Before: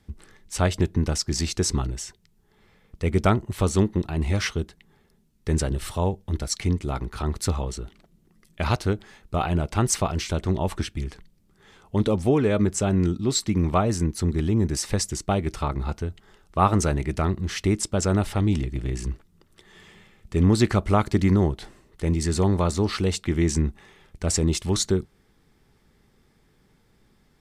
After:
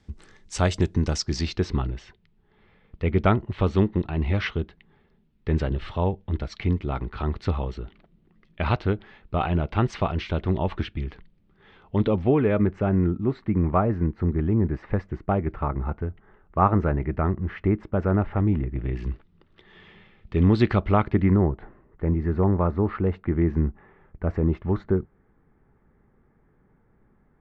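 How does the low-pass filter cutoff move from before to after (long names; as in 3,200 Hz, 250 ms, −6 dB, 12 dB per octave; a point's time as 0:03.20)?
low-pass filter 24 dB per octave
0:01.02 7,600 Hz
0:01.70 3,400 Hz
0:11.95 3,400 Hz
0:13.07 1,900 Hz
0:18.70 1,900 Hz
0:19.10 3,600 Hz
0:20.78 3,600 Hz
0:21.51 1,700 Hz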